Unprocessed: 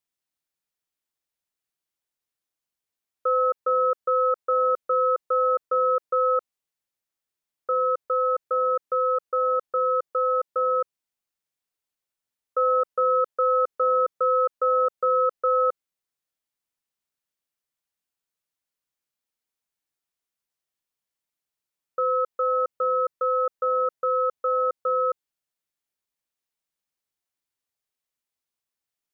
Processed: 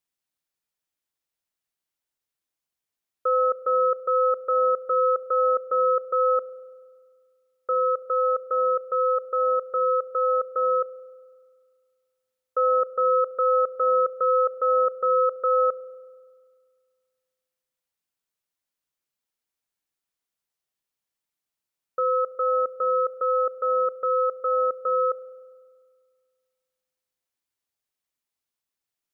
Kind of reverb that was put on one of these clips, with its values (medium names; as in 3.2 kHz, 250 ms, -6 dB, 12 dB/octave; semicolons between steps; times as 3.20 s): spring tank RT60 1.9 s, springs 33 ms, chirp 25 ms, DRR 15.5 dB